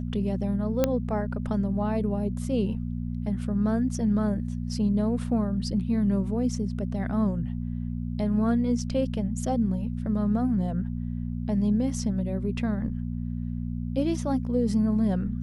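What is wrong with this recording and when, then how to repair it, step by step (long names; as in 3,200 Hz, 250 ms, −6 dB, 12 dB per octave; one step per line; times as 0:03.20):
mains hum 60 Hz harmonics 4 −31 dBFS
0:00.84: click −9 dBFS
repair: click removal
hum removal 60 Hz, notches 4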